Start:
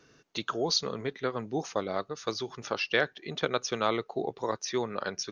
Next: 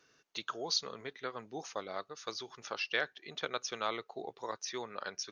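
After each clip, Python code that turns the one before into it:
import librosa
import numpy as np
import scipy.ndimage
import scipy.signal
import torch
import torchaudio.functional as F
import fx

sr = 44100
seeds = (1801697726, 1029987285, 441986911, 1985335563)

y = fx.low_shelf(x, sr, hz=460.0, db=-12.0)
y = y * librosa.db_to_amplitude(-4.5)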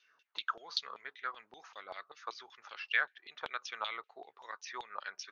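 y = fx.filter_lfo_bandpass(x, sr, shape='saw_down', hz=5.2, low_hz=830.0, high_hz=3500.0, q=3.2)
y = y * librosa.db_to_amplitude(6.5)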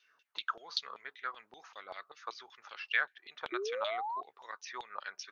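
y = fx.spec_paint(x, sr, seeds[0], shape='rise', start_s=3.52, length_s=0.69, low_hz=340.0, high_hz=1100.0, level_db=-37.0)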